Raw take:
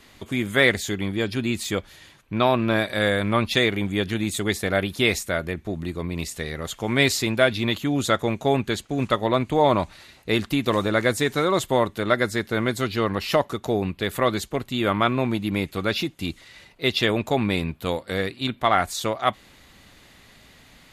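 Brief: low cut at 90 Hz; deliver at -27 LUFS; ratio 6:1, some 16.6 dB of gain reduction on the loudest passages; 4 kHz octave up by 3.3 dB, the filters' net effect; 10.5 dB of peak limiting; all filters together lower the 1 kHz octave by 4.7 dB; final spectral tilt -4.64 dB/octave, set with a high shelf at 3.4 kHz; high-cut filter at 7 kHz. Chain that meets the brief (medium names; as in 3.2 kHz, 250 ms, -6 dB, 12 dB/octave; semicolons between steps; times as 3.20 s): high-pass 90 Hz; low-pass 7 kHz; peaking EQ 1 kHz -6.5 dB; treble shelf 3.4 kHz -4 dB; peaking EQ 4 kHz +7 dB; compression 6:1, threshold -33 dBFS; trim +13.5 dB; peak limiter -15.5 dBFS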